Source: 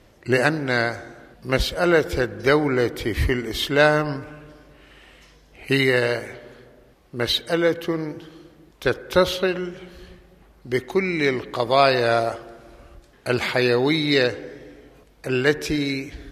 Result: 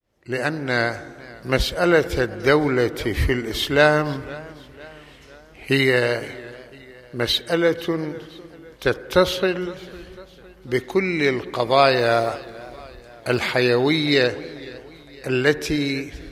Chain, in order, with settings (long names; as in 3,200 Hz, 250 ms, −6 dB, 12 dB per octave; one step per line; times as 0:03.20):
fade in at the beginning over 0.83 s
0:11.97–0:13.39: log-companded quantiser 8 bits
feedback echo with a swinging delay time 505 ms, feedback 52%, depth 108 cents, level −21 dB
level +1 dB